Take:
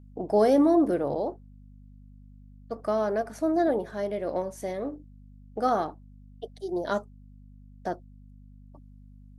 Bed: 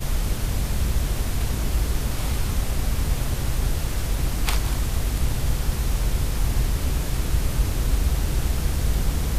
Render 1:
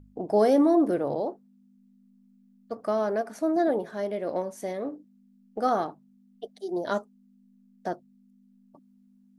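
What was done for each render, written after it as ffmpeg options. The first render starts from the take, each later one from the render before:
-af "bandreject=f=50:t=h:w=4,bandreject=f=100:t=h:w=4,bandreject=f=150:t=h:w=4"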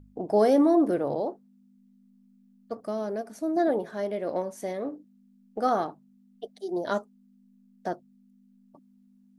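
-filter_complex "[0:a]asettb=1/sr,asplit=3[s0][s1][s2];[s0]atrim=end=2.804[s3];[s1]atrim=start=2.8:end=3.57,asetpts=PTS-STARTPTS,afade=t=in:d=0.004:c=qsin,afade=t=out:st=0.766:d=0.004:c=qsin,equalizer=f=1300:w=0.47:g=-9[s4];[s2]atrim=start=3.566[s5];[s3][s4]acrossfade=d=0.004:c1=hsin:c2=qsin[s6];[s6][s5]acrossfade=d=0.004:c1=qsin:c2=hsin"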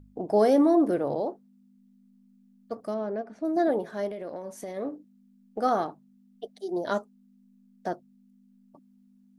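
-filter_complex "[0:a]asettb=1/sr,asplit=3[s0][s1][s2];[s0]atrim=end=2.944[s3];[s1]atrim=start=2.94:end=3.45,asetpts=PTS-STARTPTS,afade=t=in:d=0.004:c=qsin,afade=t=out:st=0.506:d=0.004:c=qsin,lowpass=2600[s4];[s2]atrim=start=3.446[s5];[s3][s4]acrossfade=d=0.004:c1=hsin:c2=qsin[s6];[s6][s5]acrossfade=d=0.004:c1=qsin:c2=hsin,asettb=1/sr,asplit=3[s7][s8][s9];[s7]atrim=end=4.084[s10];[s8]atrim=start=4.08:end=4.77,asetpts=PTS-STARTPTS,afade=t=in:d=0.004:c=qsin,afade=t=out:st=0.686:d=0.004:c=qsin,acompressor=threshold=0.0251:ratio=12:attack=3.2:release=140:knee=1:detection=peak[s11];[s9]atrim=start=4.766[s12];[s10][s11]acrossfade=d=0.004:c1=hsin:c2=qsin[s13];[s13][s12]acrossfade=d=0.004:c1=qsin:c2=hsin"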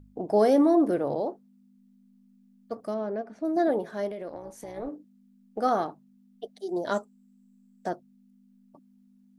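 -filter_complex "[0:a]asplit=3[s0][s1][s2];[s0]afade=t=out:st=4.28:d=0.02[s3];[s1]tremolo=f=250:d=0.71,afade=t=in:st=4.28:d=0.02,afade=t=out:st=4.87:d=0.02[s4];[s2]afade=t=in:st=4.87:d=0.02[s5];[s3][s4][s5]amix=inputs=3:normalize=0,asettb=1/sr,asplit=3[s6][s7][s8];[s6]atrim=end=6.674[s9];[s7]atrim=start=6.67:end=7.9,asetpts=PTS-STARTPTS,afade=t=in:d=0.004:c=qsin,afade=t=out:st=1.226:d=0.004:c=qsin,equalizer=f=7700:w=5.4:g=13[s10];[s8]atrim=start=7.896[s11];[s9][s10]acrossfade=d=0.004:c1=hsin:c2=qsin[s12];[s12][s11]acrossfade=d=0.004:c1=qsin:c2=hsin"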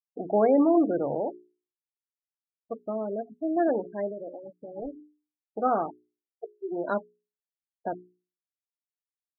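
-af "afftfilt=real='re*gte(hypot(re,im),0.0355)':imag='im*gte(hypot(re,im),0.0355)':win_size=1024:overlap=0.75,bandreject=f=60:t=h:w=6,bandreject=f=120:t=h:w=6,bandreject=f=180:t=h:w=6,bandreject=f=240:t=h:w=6,bandreject=f=300:t=h:w=6,bandreject=f=360:t=h:w=6,bandreject=f=420:t=h:w=6"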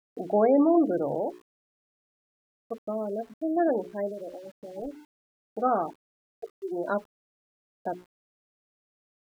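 -af "aeval=exprs='val(0)*gte(abs(val(0)),0.00266)':c=same"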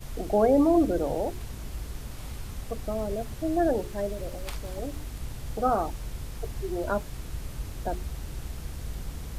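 -filter_complex "[1:a]volume=0.211[s0];[0:a][s0]amix=inputs=2:normalize=0"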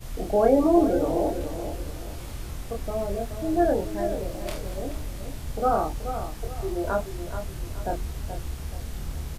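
-filter_complex "[0:a]asplit=2[s0][s1];[s1]adelay=26,volume=0.75[s2];[s0][s2]amix=inputs=2:normalize=0,asplit=2[s3][s4];[s4]adelay=428,lowpass=f=2100:p=1,volume=0.355,asplit=2[s5][s6];[s6]adelay=428,lowpass=f=2100:p=1,volume=0.36,asplit=2[s7][s8];[s8]adelay=428,lowpass=f=2100:p=1,volume=0.36,asplit=2[s9][s10];[s10]adelay=428,lowpass=f=2100:p=1,volume=0.36[s11];[s3][s5][s7][s9][s11]amix=inputs=5:normalize=0"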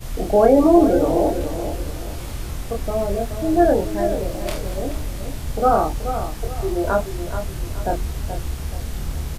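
-af "volume=2.11,alimiter=limit=0.708:level=0:latency=1"

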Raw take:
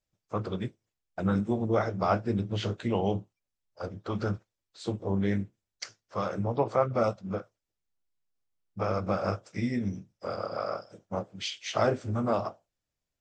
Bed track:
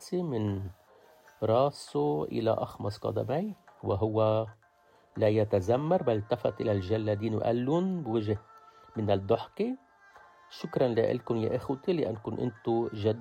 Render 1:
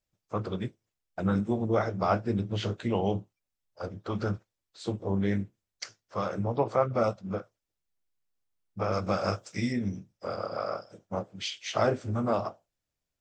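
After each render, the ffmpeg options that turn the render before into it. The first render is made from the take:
-filter_complex "[0:a]asettb=1/sr,asplit=3[s0][s1][s2];[s0]atrim=end=8.924[s3];[s1]atrim=start=8.92:end=9.73,asetpts=PTS-STARTPTS,afade=t=in:d=0.004:c=qsin,afade=t=out:st=0.806:d=0.004:c=qsin,highshelf=f=3100:g=10.5[s4];[s2]atrim=start=9.726[s5];[s3][s4]acrossfade=d=0.004:c1=hsin:c2=qsin[s6];[s6][s5]acrossfade=d=0.004:c1=qsin:c2=hsin"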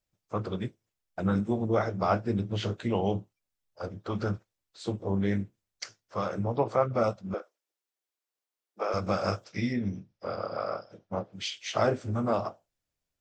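-filter_complex "[0:a]asettb=1/sr,asplit=3[s0][s1][s2];[s0]atrim=end=7.344[s3];[s1]atrim=start=7.34:end=8.94,asetpts=PTS-STARTPTS,afade=t=in:d=0.004:c=qsin,afade=t=out:st=1.596:d=0.004:c=qsin,highpass=f=330:w=0.5412,highpass=f=330:w=1.3066[s4];[s2]atrim=start=8.936[s5];[s3][s4]acrossfade=d=0.004:c1=hsin:c2=qsin[s6];[s6][s5]acrossfade=d=0.004:c1=qsin:c2=hsin,asettb=1/sr,asplit=3[s7][s8][s9];[s7]atrim=end=9.444[s10];[s8]atrim=start=9.44:end=11.33,asetpts=PTS-STARTPTS,afade=t=in:d=0.004:c=qsin,afade=t=out:st=1.886:d=0.004:c=qsin,lowpass=f=5200:w=0.5412,lowpass=f=5200:w=1.3066[s11];[s9]atrim=start=11.326[s12];[s10][s11]acrossfade=d=0.004:c1=hsin:c2=qsin[s13];[s13][s12]acrossfade=d=0.004:c1=qsin:c2=hsin"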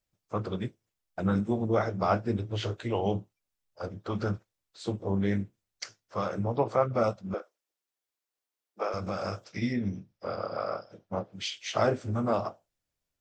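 -filter_complex "[0:a]asettb=1/sr,asplit=3[s0][s1][s2];[s0]atrim=end=2.364[s3];[s1]atrim=start=2.36:end=3.06,asetpts=PTS-STARTPTS,afade=t=in:d=0.004:c=qsin,afade=t=out:st=0.696:d=0.004:c=qsin,equalizer=f=200:w=3.8:g=-13.5[s4];[s2]atrim=start=3.056[s5];[s3][s4]acrossfade=d=0.004:c1=hsin:c2=qsin[s6];[s6][s5]acrossfade=d=0.004:c1=qsin:c2=hsin,asettb=1/sr,asplit=3[s7][s8][s9];[s7]atrim=end=8.884[s10];[s8]atrim=start=8.88:end=9.62,asetpts=PTS-STARTPTS,afade=t=in:d=0.004:c=qsin,afade=t=out:st=0.736:d=0.004:c=qsin,acompressor=threshold=0.0316:ratio=2.5:attack=3.2:release=140:knee=1:detection=peak[s11];[s9]atrim=start=9.616[s12];[s10][s11]acrossfade=d=0.004:c1=hsin:c2=qsin[s13];[s13][s12]acrossfade=d=0.004:c1=qsin:c2=hsin"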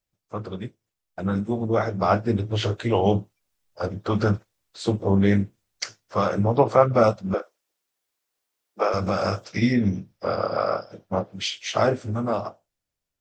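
-af "dynaudnorm=f=320:g=13:m=3.16"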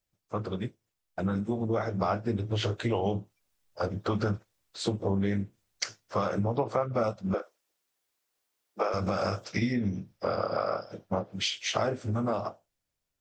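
-af "acompressor=threshold=0.0501:ratio=4"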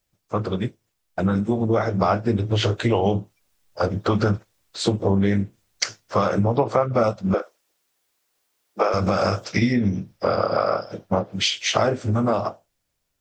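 -af "volume=2.66"

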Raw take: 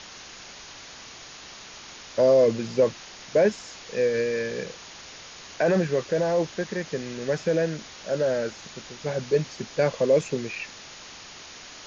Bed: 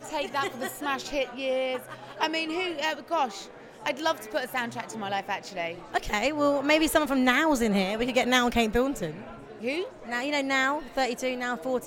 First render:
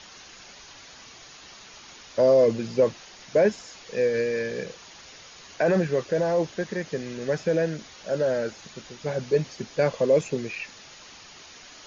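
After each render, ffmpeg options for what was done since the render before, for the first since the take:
-af "afftdn=nr=6:nf=-44"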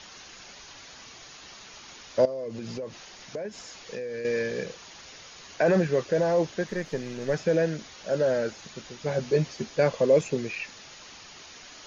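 -filter_complex "[0:a]asettb=1/sr,asplit=3[s0][s1][s2];[s0]atrim=end=2.254[s3];[s1]atrim=start=2.25:end=4.25,asetpts=PTS-STARTPTS,afade=t=in:d=0.004:c=qsin,afade=t=out:st=1.996:d=0.004:c=qsin,acompressor=threshold=0.0282:ratio=10:attack=3.2:release=140:knee=1:detection=peak[s4];[s2]atrim=start=4.246[s5];[s3][s4]acrossfade=d=0.004:c1=hsin:c2=qsin[s6];[s6][s5]acrossfade=d=0.004:c1=qsin:c2=hsin,asettb=1/sr,asplit=3[s7][s8][s9];[s7]atrim=end=6.684[s10];[s8]atrim=start=6.68:end=7.34,asetpts=PTS-STARTPTS,afade=t=in:d=0.004:c=qsin,afade=t=out:st=0.656:d=0.004:c=qsin,aeval=exprs='if(lt(val(0),0),0.708*val(0),val(0))':c=same[s11];[s9]atrim=start=7.336[s12];[s10][s11]acrossfade=d=0.004:c1=hsin:c2=qsin[s13];[s13][s12]acrossfade=d=0.004:c1=qsin:c2=hsin,asettb=1/sr,asplit=3[s14][s15][s16];[s14]atrim=end=9.104[s17];[s15]atrim=start=9.1:end=9.7,asetpts=PTS-STARTPTS,afade=t=in:d=0.004:c=qsin,afade=t=out:st=0.596:d=0.004:c=qsin,asplit=2[s18][s19];[s19]adelay=13,volume=0.447[s20];[s18][s20]amix=inputs=2:normalize=0,atrim=end_sample=26460[s21];[s16]atrim=start=9.696[s22];[s17][s21]acrossfade=d=0.004:c1=hsin:c2=qsin[s23];[s23][s22]acrossfade=d=0.004:c1=qsin:c2=hsin"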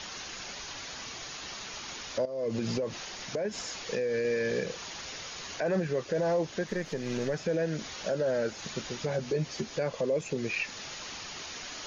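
-filter_complex "[0:a]asplit=2[s0][s1];[s1]acompressor=threshold=0.0251:ratio=6,volume=0.891[s2];[s0][s2]amix=inputs=2:normalize=0,alimiter=limit=0.0891:level=0:latency=1:release=207"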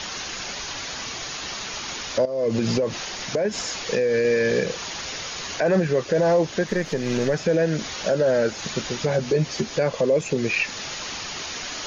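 -af "volume=2.82"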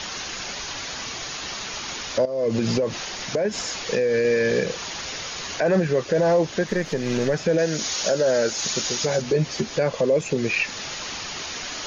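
-filter_complex "[0:a]asettb=1/sr,asplit=3[s0][s1][s2];[s0]atrim=end=7.584[s3];[s1]atrim=start=7.58:end=9.22,asetpts=PTS-STARTPTS,afade=t=in:d=0.004:c=qsin,afade=t=out:st=1.636:d=0.004:c=qsin,bass=f=250:g=-5,treble=f=4000:g=11[s4];[s2]atrim=start=9.216[s5];[s3][s4]acrossfade=d=0.004:c1=hsin:c2=qsin[s6];[s6][s5]acrossfade=d=0.004:c1=qsin:c2=hsin"

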